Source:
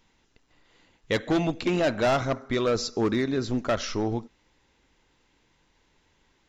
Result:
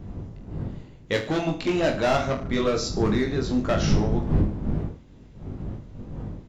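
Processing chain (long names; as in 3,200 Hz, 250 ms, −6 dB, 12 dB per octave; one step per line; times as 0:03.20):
wind on the microphone 180 Hz −30 dBFS
reverse bouncing-ball delay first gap 20 ms, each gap 1.2×, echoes 5
level −1 dB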